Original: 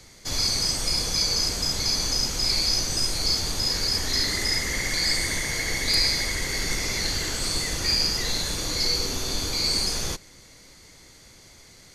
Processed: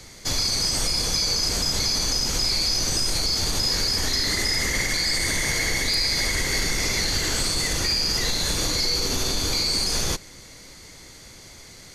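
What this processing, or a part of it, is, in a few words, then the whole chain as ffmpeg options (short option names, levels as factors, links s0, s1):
clipper into limiter: -af "asoftclip=type=hard:threshold=0.251,alimiter=limit=0.106:level=0:latency=1:release=50,volume=1.88"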